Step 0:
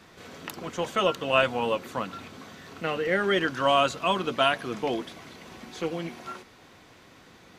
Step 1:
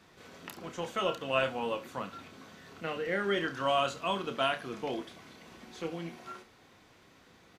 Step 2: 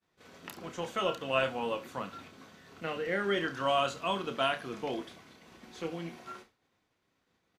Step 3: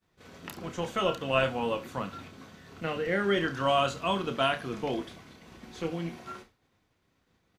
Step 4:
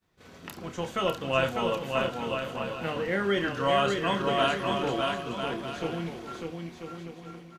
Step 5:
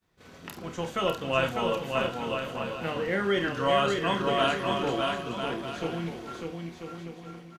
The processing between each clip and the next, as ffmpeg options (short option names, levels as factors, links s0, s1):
-af "aecho=1:1:30|70:0.376|0.15,volume=0.422"
-af "agate=range=0.0224:threshold=0.00398:ratio=3:detection=peak"
-af "lowshelf=f=140:g=11,volume=1.33"
-af "aecho=1:1:600|990|1244|1408|1515:0.631|0.398|0.251|0.158|0.1"
-filter_complex "[0:a]asplit=2[s0][s1];[s1]adelay=48,volume=0.237[s2];[s0][s2]amix=inputs=2:normalize=0"